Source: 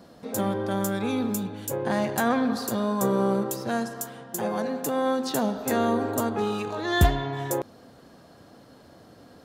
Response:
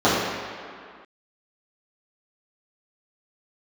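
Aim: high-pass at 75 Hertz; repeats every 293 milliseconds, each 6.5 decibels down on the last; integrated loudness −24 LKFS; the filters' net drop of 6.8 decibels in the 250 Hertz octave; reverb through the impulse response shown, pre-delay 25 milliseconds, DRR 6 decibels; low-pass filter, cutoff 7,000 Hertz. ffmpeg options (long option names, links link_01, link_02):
-filter_complex "[0:a]highpass=75,lowpass=7000,equalizer=frequency=250:width_type=o:gain=-8.5,aecho=1:1:293|586|879|1172|1465|1758:0.473|0.222|0.105|0.0491|0.0231|0.0109,asplit=2[link_01][link_02];[1:a]atrim=start_sample=2205,adelay=25[link_03];[link_02][link_03]afir=irnorm=-1:irlink=0,volume=-30dB[link_04];[link_01][link_04]amix=inputs=2:normalize=0,volume=3dB"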